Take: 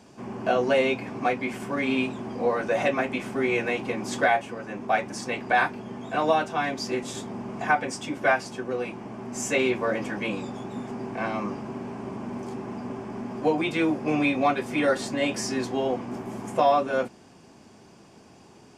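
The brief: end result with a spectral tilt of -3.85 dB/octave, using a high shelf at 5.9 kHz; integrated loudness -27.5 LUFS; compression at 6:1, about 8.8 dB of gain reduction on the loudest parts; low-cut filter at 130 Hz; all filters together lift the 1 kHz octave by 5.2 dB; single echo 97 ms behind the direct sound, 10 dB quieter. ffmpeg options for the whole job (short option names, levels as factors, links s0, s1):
-af "highpass=130,equalizer=f=1000:t=o:g=7.5,highshelf=f=5900:g=3.5,acompressor=threshold=0.0794:ratio=6,aecho=1:1:97:0.316,volume=1.12"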